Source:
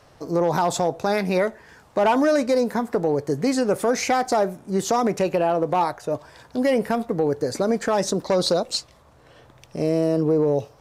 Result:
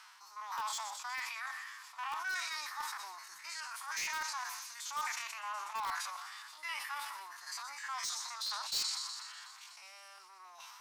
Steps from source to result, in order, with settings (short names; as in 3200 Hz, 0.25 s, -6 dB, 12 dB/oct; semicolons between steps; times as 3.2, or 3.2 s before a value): stepped spectrum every 50 ms; formant-preserving pitch shift +3.5 st; reverse; compressor 8:1, threshold -32 dBFS, peak gain reduction 16.5 dB; reverse; elliptic high-pass 1000 Hz, stop band 50 dB; thin delay 0.123 s, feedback 72%, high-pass 4100 Hz, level -10 dB; dynamic EQ 9500 Hz, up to -4 dB, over -58 dBFS, Q 0.78; in parallel at -7 dB: wrapped overs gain 34 dB; on the sum: sustainer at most 30 dB/s; gain +1 dB